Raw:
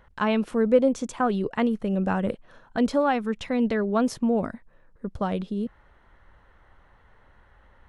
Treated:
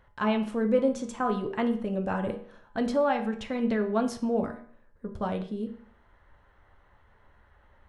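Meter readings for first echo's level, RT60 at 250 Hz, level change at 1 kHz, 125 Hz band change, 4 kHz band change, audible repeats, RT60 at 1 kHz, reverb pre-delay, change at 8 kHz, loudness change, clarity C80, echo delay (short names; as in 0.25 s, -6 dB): none, 0.55 s, -3.0 dB, -4.5 dB, -3.5 dB, none, 0.50 s, 5 ms, -4.5 dB, -3.5 dB, 14.0 dB, none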